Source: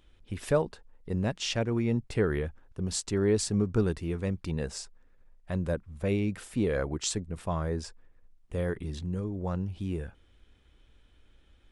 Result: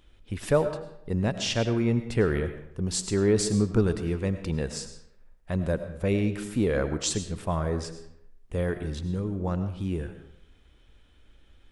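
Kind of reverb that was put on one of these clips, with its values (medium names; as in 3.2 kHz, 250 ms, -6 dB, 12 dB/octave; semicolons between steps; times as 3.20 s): algorithmic reverb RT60 0.72 s, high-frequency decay 0.75×, pre-delay 60 ms, DRR 9.5 dB; trim +3 dB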